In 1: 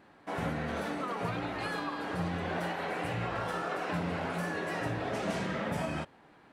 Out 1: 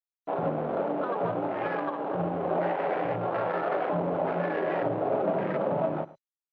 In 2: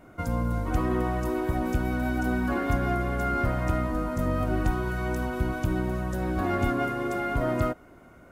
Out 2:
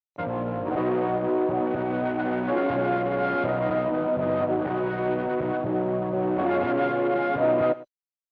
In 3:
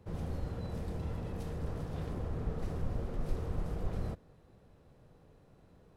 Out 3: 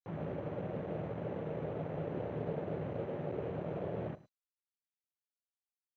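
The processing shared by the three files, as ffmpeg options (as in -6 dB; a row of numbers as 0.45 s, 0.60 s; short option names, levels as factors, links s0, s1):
-filter_complex "[0:a]afwtdn=0.0158,adynamicequalizer=threshold=0.0126:dfrequency=340:dqfactor=1.3:tfrequency=340:tqfactor=1.3:attack=5:release=100:ratio=0.375:range=1.5:mode=boostabove:tftype=bell,asplit=2[s0][s1];[s1]alimiter=limit=0.075:level=0:latency=1:release=25,volume=0.794[s2];[s0][s2]amix=inputs=2:normalize=0,acrusher=bits=6:mix=0:aa=0.000001,adynamicsmooth=sensitivity=4.5:basefreq=890,asoftclip=type=hard:threshold=0.112,highpass=f=130:w=0.5412,highpass=f=130:w=1.3066,equalizer=f=220:t=q:w=4:g=-6,equalizer=f=390:t=q:w=4:g=3,equalizer=f=590:t=q:w=4:g=9,equalizer=f=830:t=q:w=4:g=4,lowpass=f=3200:w=0.5412,lowpass=f=3200:w=1.3066,aecho=1:1:107:0.119,volume=0.794" -ar 16000 -c:a mp2 -b:a 128k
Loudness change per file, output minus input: +5.5 LU, +2.5 LU, 0.0 LU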